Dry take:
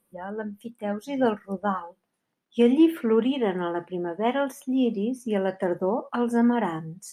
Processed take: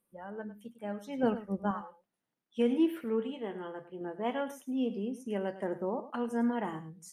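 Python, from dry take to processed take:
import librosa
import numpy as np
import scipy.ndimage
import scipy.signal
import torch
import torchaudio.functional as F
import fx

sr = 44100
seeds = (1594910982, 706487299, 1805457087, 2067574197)

y = fx.low_shelf(x, sr, hz=270.0, db=10.5, at=(1.23, 1.71))
y = fx.comb_fb(y, sr, f0_hz=74.0, decay_s=0.2, harmonics='all', damping=0.0, mix_pct=70, at=(3.04, 4.01))
y = y + 10.0 ** (-14.0 / 20.0) * np.pad(y, (int(103 * sr / 1000.0), 0))[:len(y)]
y = y * librosa.db_to_amplitude(-9.0)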